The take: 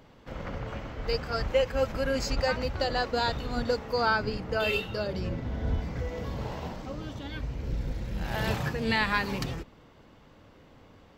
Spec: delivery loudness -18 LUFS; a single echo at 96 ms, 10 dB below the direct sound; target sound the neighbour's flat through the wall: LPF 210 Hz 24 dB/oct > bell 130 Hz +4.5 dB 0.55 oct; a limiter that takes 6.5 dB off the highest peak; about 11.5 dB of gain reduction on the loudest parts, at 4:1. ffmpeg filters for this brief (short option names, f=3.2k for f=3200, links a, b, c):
-af "acompressor=threshold=-35dB:ratio=4,alimiter=level_in=5.5dB:limit=-24dB:level=0:latency=1,volume=-5.5dB,lowpass=f=210:w=0.5412,lowpass=f=210:w=1.3066,equalizer=f=130:t=o:w=0.55:g=4.5,aecho=1:1:96:0.316,volume=24.5dB"